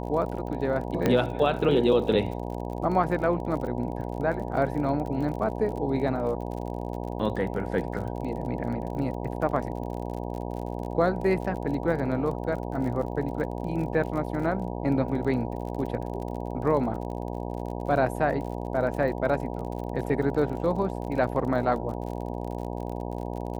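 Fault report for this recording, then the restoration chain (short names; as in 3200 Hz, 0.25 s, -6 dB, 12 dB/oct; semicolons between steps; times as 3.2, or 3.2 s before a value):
buzz 60 Hz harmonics 16 -33 dBFS
crackle 43/s -35 dBFS
1.06 pop -10 dBFS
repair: de-click; de-hum 60 Hz, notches 16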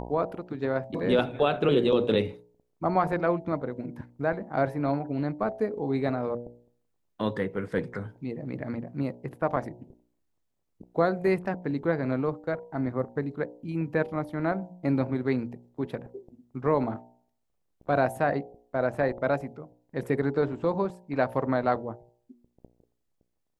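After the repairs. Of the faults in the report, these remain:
none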